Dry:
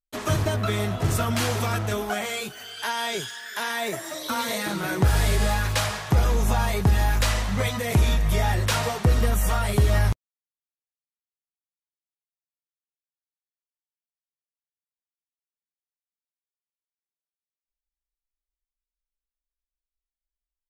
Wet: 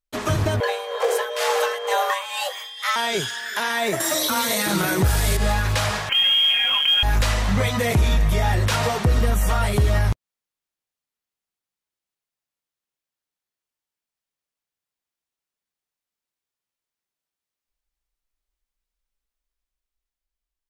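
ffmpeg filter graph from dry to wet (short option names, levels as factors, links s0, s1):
-filter_complex "[0:a]asettb=1/sr,asplit=3[s0][s1][s2];[s0]atrim=end=0.604[s3];[s1]atrim=start=0.6:end=2.96,asetpts=PTS-STARTPTS,afade=t=in:d=0.004:c=qsin,afade=t=out:st=2.356:d=0.004:c=qsin,tremolo=f=2.1:d=0.76,afreqshift=370,aeval=exprs='val(0)+0.00631*sin(2*PI*3200*n/s)':c=same[s4];[s2]atrim=start=2.956[s5];[s3][s4]acrossfade=d=0.004:c1=hsin:c2=qsin[s6];[s6][s5]acrossfade=d=0.004:c1=qsin:c2=hsin,asettb=1/sr,asplit=3[s7][s8][s9];[s7]atrim=end=4.004[s10];[s8]atrim=start=4:end=5.37,asetpts=PTS-STARTPTS,afade=t=in:d=0.004:c=qsin,afade=t=out:st=1.366:d=0.004:c=qsin,highshelf=f=6300:g=12,acontrast=30[s11];[s9]atrim=start=5.366[s12];[s10][s11]acrossfade=d=0.004:c1=hsin:c2=qsin[s13];[s13][s12]acrossfade=d=0.004:c1=qsin:c2=hsin,asettb=1/sr,asplit=3[s14][s15][s16];[s14]atrim=end=6.094[s17];[s15]atrim=start=6.09:end=7.03,asetpts=PTS-STARTPTS,afade=t=in:d=0.004:c=qsin,afade=t=out:st=0.936:d=0.004:c=qsin,aecho=1:1:3.6:0.76,atrim=end_sample=41454,lowpass=f=2800:t=q:w=0.5098,lowpass=f=2800:t=q:w=0.6013,lowpass=f=2800:t=q:w=0.9,lowpass=f=2800:t=q:w=2.563,afreqshift=-3300,acrusher=bits=6:mode=log:mix=0:aa=0.000001[s18];[s16]atrim=start=7.026[s19];[s17][s18]acrossfade=d=0.004:c1=hsin:c2=qsin[s20];[s20][s19]acrossfade=d=0.004:c1=qsin:c2=hsin,dynaudnorm=f=290:g=9:m=1.58,alimiter=limit=0.168:level=0:latency=1:release=176,highshelf=f=7300:g=-4.5,volume=1.68"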